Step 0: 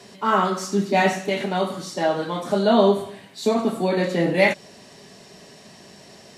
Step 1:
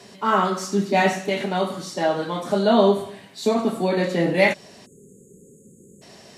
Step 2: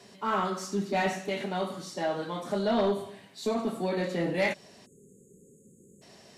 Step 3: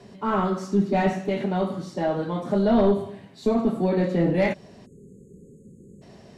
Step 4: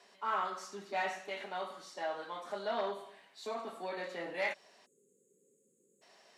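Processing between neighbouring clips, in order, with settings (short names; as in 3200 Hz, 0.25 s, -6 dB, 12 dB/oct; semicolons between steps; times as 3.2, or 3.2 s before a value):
spectral delete 4.86–6.02, 540–6400 Hz
soft clip -11.5 dBFS, distortion -17 dB; gain -7.5 dB
tilt -3 dB/oct; gain +3 dB
HPF 940 Hz 12 dB/oct; gain -5 dB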